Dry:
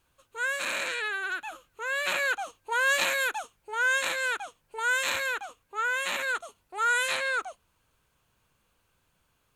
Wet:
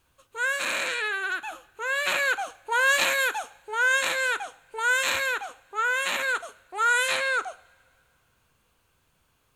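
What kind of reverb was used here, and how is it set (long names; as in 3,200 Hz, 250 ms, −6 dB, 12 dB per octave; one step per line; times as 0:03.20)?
coupled-rooms reverb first 0.52 s, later 2.4 s, from −20 dB, DRR 14 dB
level +3 dB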